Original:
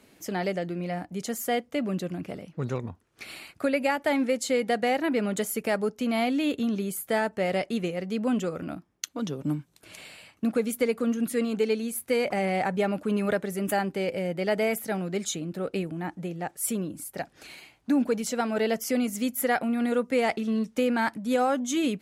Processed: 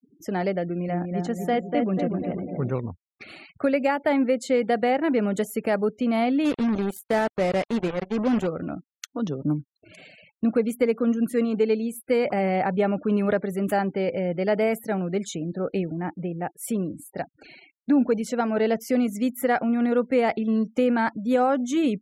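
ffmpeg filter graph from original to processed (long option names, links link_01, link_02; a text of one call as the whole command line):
ffmpeg -i in.wav -filter_complex "[0:a]asettb=1/sr,asplit=3[link_01][link_02][link_03];[link_01]atrim=end=0.644[link_04];[link_02]atrim=start=0.64:end=2.72,asetpts=PTS-STARTPTS,afade=type=in:duration=0.004:curve=qsin,afade=type=out:start_time=2.076:duration=0.004:curve=qsin,highshelf=frequency=8400:gain=-10.5,asplit=2[link_05][link_06];[link_06]adelay=244,lowpass=frequency=2000:poles=1,volume=-4dB,asplit=2[link_07][link_08];[link_08]adelay=244,lowpass=frequency=2000:poles=1,volume=0.54,asplit=2[link_09][link_10];[link_10]adelay=244,lowpass=frequency=2000:poles=1,volume=0.54,asplit=2[link_11][link_12];[link_12]adelay=244,lowpass=frequency=2000:poles=1,volume=0.54,asplit=2[link_13][link_14];[link_14]adelay=244,lowpass=frequency=2000:poles=1,volume=0.54,asplit=2[link_15][link_16];[link_16]adelay=244,lowpass=frequency=2000:poles=1,volume=0.54,asplit=2[link_17][link_18];[link_18]adelay=244,lowpass=frequency=2000:poles=1,volume=0.54[link_19];[link_05][link_07][link_09][link_11][link_13][link_15][link_17][link_19]amix=inputs=8:normalize=0,atrim=end_sample=91728[link_20];[link_03]atrim=start=2.716[link_21];[link_04][link_20]acrossfade=duration=0.004:curve1=hsin:curve2=qsin[link_22];[link_22][link_21]acrossfade=duration=0.004:curve1=qsin:curve2=hsin,asettb=1/sr,asplit=3[link_23][link_24][link_25];[link_23]atrim=end=6.454[link_26];[link_24]atrim=start=6.45:end=8.47,asetpts=PTS-STARTPTS,afade=type=in:duration=0.004:curve=qsin,afade=type=out:start_time=2.016:duration=0.004:curve=qsin,lowshelf=frequency=69:gain=-3.5,acrusher=bits=4:mix=0:aa=0.5[link_27];[link_25]atrim=start=8.466[link_28];[link_26][link_27]acrossfade=duration=0.004:curve1=hsin:curve2=qsin[link_29];[link_29][link_28]acrossfade=duration=0.004:curve1=qsin:curve2=hsin,afftfilt=real='re*gte(hypot(re,im),0.00631)':imag='im*gte(hypot(re,im),0.00631)':win_size=1024:overlap=0.75,highshelf=frequency=2400:gain=-10.5,volume=4dB" out.wav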